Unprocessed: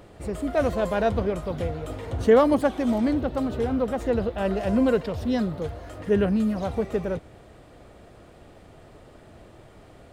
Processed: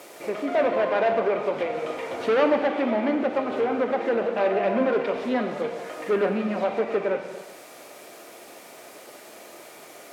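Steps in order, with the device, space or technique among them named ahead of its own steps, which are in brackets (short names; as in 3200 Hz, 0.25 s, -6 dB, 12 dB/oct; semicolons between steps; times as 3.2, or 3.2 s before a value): drive-through speaker (BPF 400–3300 Hz; bell 2300 Hz +8 dB 0.3 oct; hard clip -24 dBFS, distortion -7 dB; white noise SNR 23 dB); treble ducked by the level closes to 2700 Hz, closed at -26.5 dBFS; HPF 150 Hz 12 dB/oct; non-linear reverb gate 0.46 s falling, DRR 5 dB; gain +5.5 dB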